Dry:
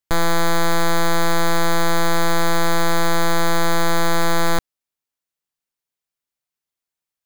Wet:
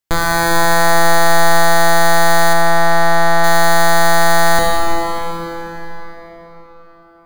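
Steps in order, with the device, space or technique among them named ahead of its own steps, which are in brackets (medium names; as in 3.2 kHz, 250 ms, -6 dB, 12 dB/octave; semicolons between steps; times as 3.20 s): cathedral (reverberation RT60 5.2 s, pre-delay 19 ms, DRR -3 dB); 2.53–3.44 s: treble shelf 4.5 kHz -10.5 dB; feedback echo behind a high-pass 85 ms, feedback 75%, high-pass 3.9 kHz, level -8.5 dB; trim +3 dB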